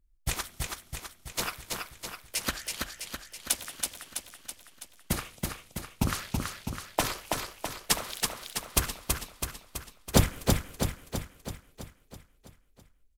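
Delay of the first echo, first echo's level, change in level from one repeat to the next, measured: 328 ms, -3.5 dB, -4.5 dB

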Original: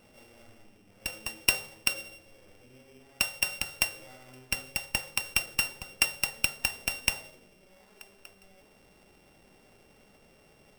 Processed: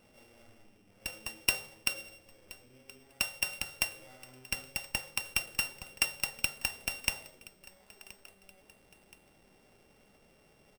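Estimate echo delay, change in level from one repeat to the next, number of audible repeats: 1024 ms, -6.0 dB, 2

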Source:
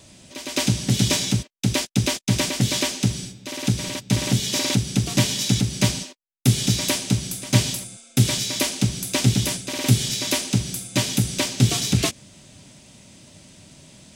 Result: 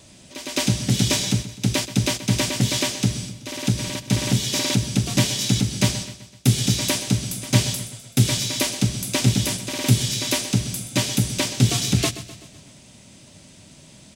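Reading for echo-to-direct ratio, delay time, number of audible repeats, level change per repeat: -13.0 dB, 127 ms, 4, -5.5 dB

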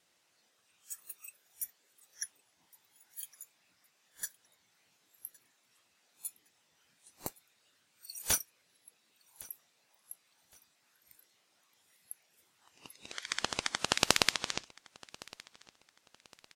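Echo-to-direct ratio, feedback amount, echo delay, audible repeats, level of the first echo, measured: -22.5 dB, 33%, 1113 ms, 2, -23.0 dB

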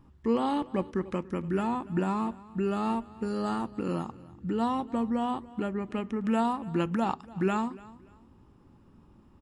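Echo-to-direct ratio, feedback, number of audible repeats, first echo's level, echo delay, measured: -20.0 dB, 28%, 2, -20.5 dB, 290 ms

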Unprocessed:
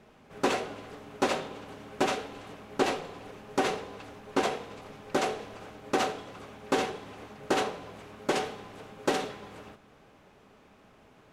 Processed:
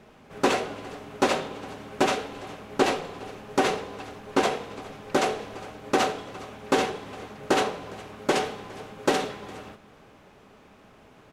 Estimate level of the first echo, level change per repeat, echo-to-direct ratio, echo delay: -22.0 dB, no regular repeats, -22.0 dB, 410 ms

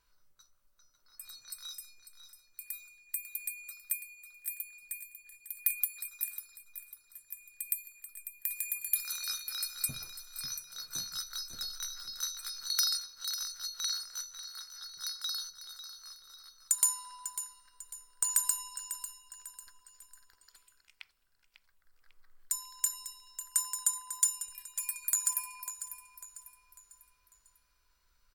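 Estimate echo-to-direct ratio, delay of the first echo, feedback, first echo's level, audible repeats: -11.0 dB, 547 ms, 40%, -11.5 dB, 3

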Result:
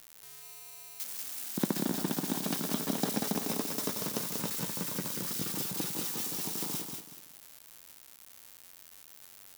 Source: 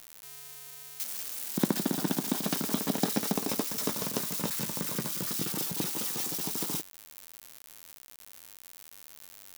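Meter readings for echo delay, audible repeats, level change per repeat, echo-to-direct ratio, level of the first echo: 188 ms, 3, -10.5 dB, -4.5 dB, -5.0 dB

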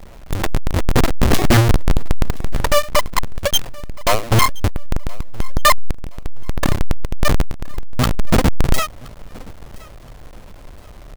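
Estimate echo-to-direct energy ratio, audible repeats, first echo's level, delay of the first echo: -22.5 dB, 2, -23.0 dB, 1021 ms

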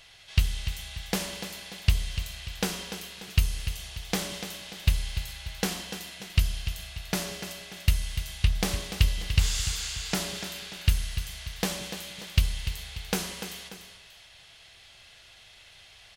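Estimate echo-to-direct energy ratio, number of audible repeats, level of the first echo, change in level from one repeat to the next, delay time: -9.0 dB, 2, -10.0 dB, -7.0 dB, 293 ms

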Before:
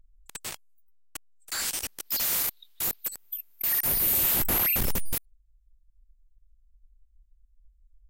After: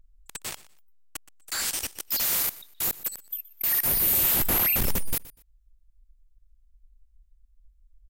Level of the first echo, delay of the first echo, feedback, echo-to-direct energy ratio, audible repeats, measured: -19.0 dB, 122 ms, 23%, -19.0 dB, 2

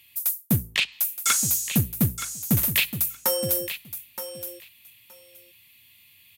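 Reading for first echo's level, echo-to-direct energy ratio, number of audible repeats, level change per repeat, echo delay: -11.0 dB, -11.0 dB, 2, -16.5 dB, 921 ms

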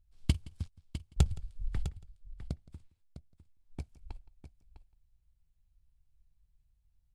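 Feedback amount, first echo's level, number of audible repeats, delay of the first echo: no regular repeats, -22.0 dB, 3, 169 ms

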